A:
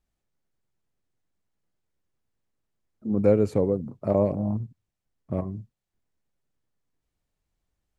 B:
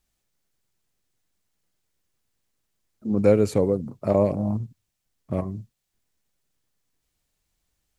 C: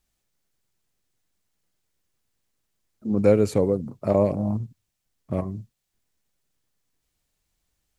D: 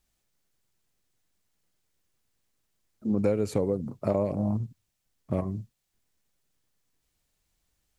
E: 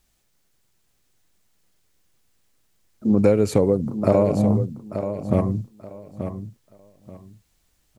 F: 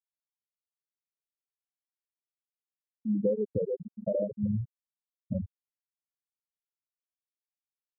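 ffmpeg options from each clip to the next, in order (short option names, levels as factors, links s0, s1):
-af "highshelf=f=2100:g=10.5,volume=1.19"
-af anull
-af "acompressor=threshold=0.0794:ratio=5"
-af "aecho=1:1:882|1764|2646:0.335|0.077|0.0177,volume=2.66"
-af "bandreject=f=98.18:t=h:w=4,bandreject=f=196.36:t=h:w=4,bandreject=f=294.54:t=h:w=4,bandreject=f=392.72:t=h:w=4,bandreject=f=490.9:t=h:w=4,afftfilt=real='re*gte(hypot(re,im),0.708)':imag='im*gte(hypot(re,im),0.708)':win_size=1024:overlap=0.75,volume=0.355"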